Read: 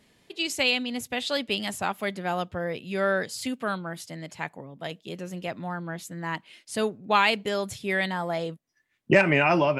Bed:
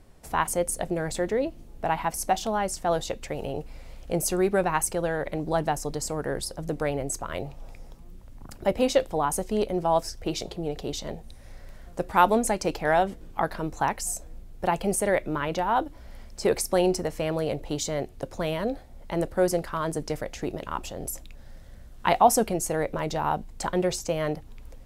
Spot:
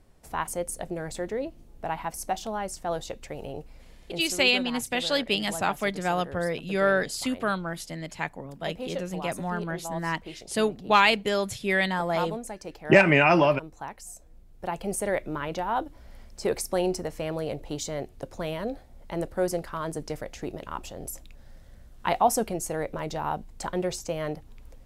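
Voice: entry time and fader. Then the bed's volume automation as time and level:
3.80 s, +2.0 dB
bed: 3.57 s -5 dB
4.36 s -12.5 dB
14.13 s -12.5 dB
15.02 s -3.5 dB

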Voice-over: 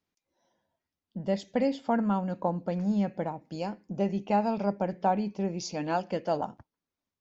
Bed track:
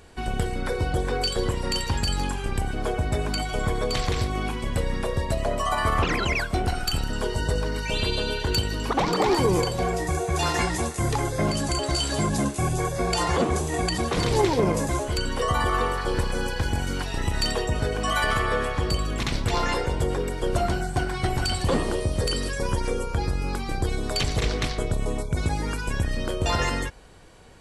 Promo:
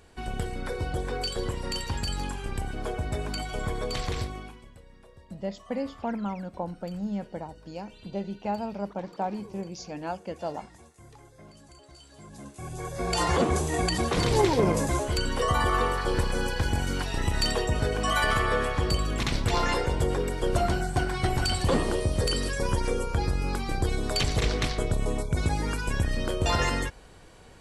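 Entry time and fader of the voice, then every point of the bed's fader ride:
4.15 s, -4.5 dB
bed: 4.21 s -5.5 dB
4.79 s -26.5 dB
12.12 s -26.5 dB
13.21 s -1 dB

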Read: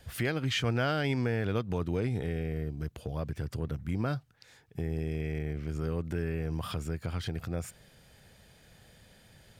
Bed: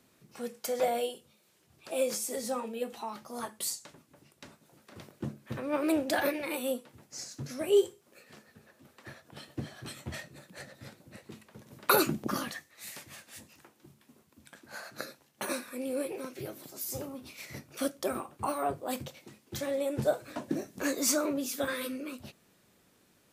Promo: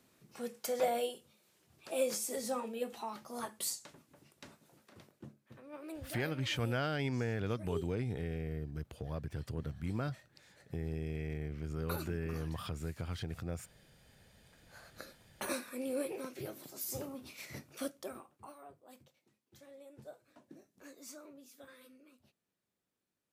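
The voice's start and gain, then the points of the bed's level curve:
5.95 s, -5.5 dB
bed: 4.7 s -3 dB
5.43 s -18 dB
14.44 s -18 dB
15.5 s -3 dB
17.61 s -3 dB
18.66 s -23 dB

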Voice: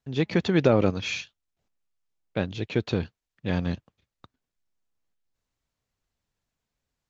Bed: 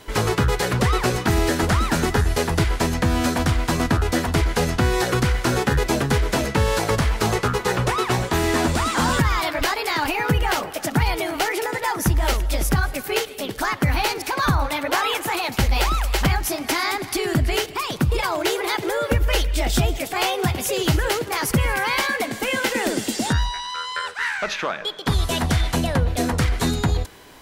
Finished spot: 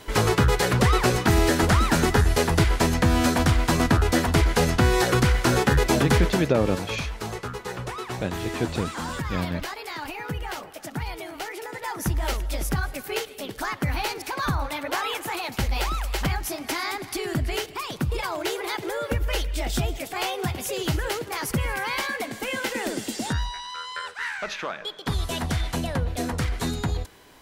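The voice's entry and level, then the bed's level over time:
5.85 s, -1.5 dB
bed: 6.24 s 0 dB
6.49 s -11.5 dB
11.59 s -11.5 dB
12.09 s -6 dB

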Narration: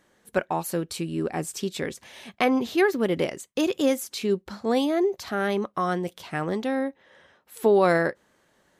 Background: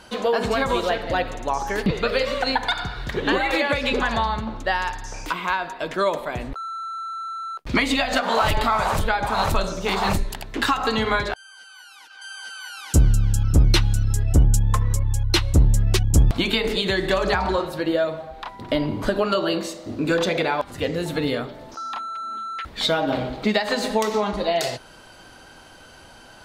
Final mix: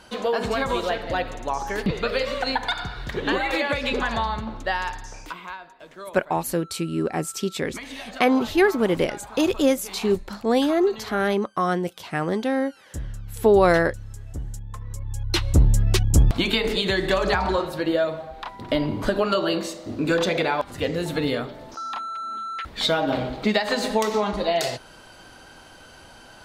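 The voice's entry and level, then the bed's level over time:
5.80 s, +3.0 dB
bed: 4.97 s -2.5 dB
5.74 s -17 dB
14.7 s -17 dB
15.52 s -0.5 dB

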